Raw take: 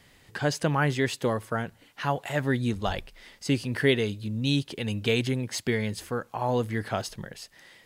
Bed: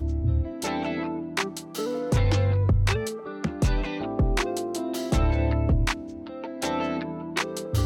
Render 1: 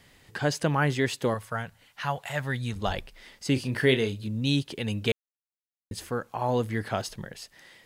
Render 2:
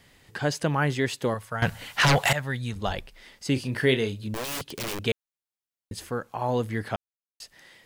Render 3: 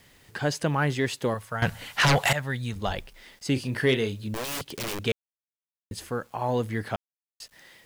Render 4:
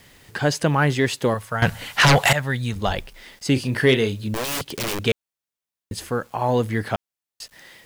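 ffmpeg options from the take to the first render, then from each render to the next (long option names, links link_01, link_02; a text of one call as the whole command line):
ffmpeg -i in.wav -filter_complex "[0:a]asettb=1/sr,asplit=3[link_01][link_02][link_03];[link_01]atrim=end=1.344[link_04];[link_02]atrim=start=1.34:end=2.76,asetpts=PTS-STARTPTS,afade=type=in:duration=0.004:curve=qsin,afade=type=out:start_time=1.416:duration=0.004:curve=qsin,equalizer=frequency=320:width_type=o:width=1.1:gain=-13.5[link_05];[link_03]atrim=start=2.756[link_06];[link_04][link_05]acrossfade=duration=0.004:curve1=hsin:curve2=qsin[link_07];[link_07][link_06]acrossfade=duration=0.004:curve1=qsin:curve2=hsin,asettb=1/sr,asplit=3[link_08][link_09][link_10];[link_08]atrim=end=3.534[link_11];[link_09]atrim=start=3.53:end=4.27,asetpts=PTS-STARTPTS,afade=type=in:duration=0.004:curve=qsin,afade=type=out:start_time=0.736:duration=0.004:curve=qsin,asplit=2[link_12][link_13];[link_13]adelay=31,volume=-9dB[link_14];[link_12][link_14]amix=inputs=2:normalize=0,atrim=end_sample=32634[link_15];[link_10]atrim=start=4.266[link_16];[link_11][link_15]acrossfade=duration=0.004:curve1=hsin:curve2=qsin[link_17];[link_17][link_16]acrossfade=duration=0.004:curve1=qsin:curve2=hsin,asplit=3[link_18][link_19][link_20];[link_18]atrim=end=5.12,asetpts=PTS-STARTPTS,afade=type=out:start_time=5.116:duration=0.004:curve=hsin[link_21];[link_19]atrim=start=5.12:end=5.91,asetpts=PTS-STARTPTS,volume=0[link_22];[link_20]atrim=start=5.91,asetpts=PTS-STARTPTS,afade=type=in:duration=0.004:curve=hsin[link_23];[link_21][link_22][link_23]concat=n=3:v=0:a=1" out.wav
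ffmpeg -i in.wav -filter_complex "[0:a]asettb=1/sr,asplit=3[link_01][link_02][link_03];[link_01]atrim=end=1.624[link_04];[link_02]atrim=start=1.62:end=2.33,asetpts=PTS-STARTPTS,afade=type=in:duration=0.004:curve=qsin,afade=type=out:start_time=0.706:duration=0.004:curve=qsin,aeval=exprs='0.168*sin(PI/2*5.01*val(0)/0.168)':channel_layout=same[link_05];[link_03]atrim=start=2.326[link_06];[link_04][link_05]acrossfade=duration=0.004:curve1=hsin:curve2=qsin[link_07];[link_07][link_06]acrossfade=duration=0.004:curve1=qsin:curve2=hsin,asettb=1/sr,asplit=3[link_08][link_09][link_10];[link_08]atrim=end=4.344[link_11];[link_09]atrim=start=4.34:end=5.04,asetpts=PTS-STARTPTS,afade=type=in:duration=0.004:curve=qsin,afade=type=out:start_time=0.696:duration=0.004:curve=qsin,aeval=exprs='(mod(22.4*val(0)+1,2)-1)/22.4':channel_layout=same[link_12];[link_10]atrim=start=5.036[link_13];[link_11][link_12]acrossfade=duration=0.004:curve1=hsin:curve2=qsin[link_14];[link_14][link_13]acrossfade=duration=0.004:curve1=qsin:curve2=hsin,asplit=3[link_15][link_16][link_17];[link_15]atrim=end=6.96,asetpts=PTS-STARTPTS,afade=type=out:start_time=6.956:duration=0.004:curve=hsin[link_18];[link_16]atrim=start=6.96:end=7.4,asetpts=PTS-STARTPTS,volume=0[link_19];[link_17]atrim=start=7.4,asetpts=PTS-STARTPTS,afade=type=in:duration=0.004:curve=hsin[link_20];[link_18][link_19][link_20]concat=n=3:v=0:a=1" out.wav
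ffmpeg -i in.wav -af "asoftclip=type=tanh:threshold=-10dB,acrusher=bits=9:mix=0:aa=0.000001" out.wav
ffmpeg -i in.wav -af "volume=6dB" out.wav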